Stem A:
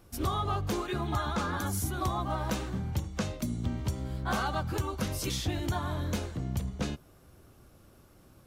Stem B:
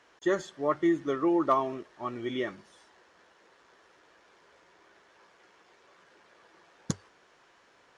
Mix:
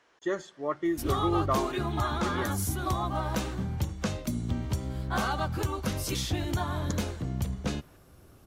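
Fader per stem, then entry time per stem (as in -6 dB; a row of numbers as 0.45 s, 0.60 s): +1.5 dB, -3.5 dB; 0.85 s, 0.00 s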